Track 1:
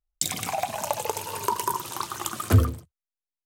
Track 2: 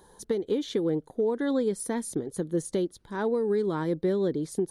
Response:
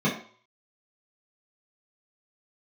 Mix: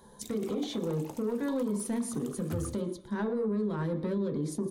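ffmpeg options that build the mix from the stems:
-filter_complex "[0:a]volume=0.422,afade=t=in:st=2.5:d=0.28:silence=0.266073[s0];[1:a]asoftclip=type=tanh:threshold=0.0794,volume=0.891,asplit=3[s1][s2][s3];[s2]volume=0.141[s4];[s3]volume=0.106[s5];[2:a]atrim=start_sample=2205[s6];[s4][s6]afir=irnorm=-1:irlink=0[s7];[s5]aecho=0:1:118|236|354|472|590|708:1|0.41|0.168|0.0689|0.0283|0.0116[s8];[s0][s1][s7][s8]amix=inputs=4:normalize=0,alimiter=limit=0.0631:level=0:latency=1:release=72"

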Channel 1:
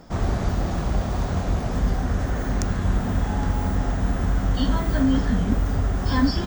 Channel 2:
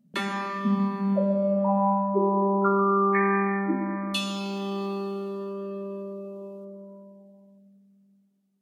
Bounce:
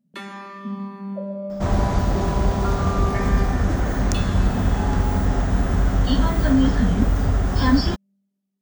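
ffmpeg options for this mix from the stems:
-filter_complex "[0:a]adelay=1500,volume=1.41[s0];[1:a]volume=0.501[s1];[s0][s1]amix=inputs=2:normalize=0"

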